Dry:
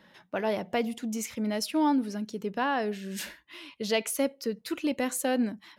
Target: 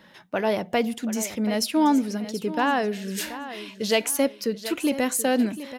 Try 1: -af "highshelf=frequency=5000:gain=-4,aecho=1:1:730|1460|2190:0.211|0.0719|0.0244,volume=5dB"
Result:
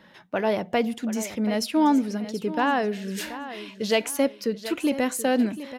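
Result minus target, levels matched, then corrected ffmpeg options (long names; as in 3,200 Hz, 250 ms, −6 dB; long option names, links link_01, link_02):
8,000 Hz band −4.5 dB
-af "highshelf=frequency=5000:gain=2.5,aecho=1:1:730|1460|2190:0.211|0.0719|0.0244,volume=5dB"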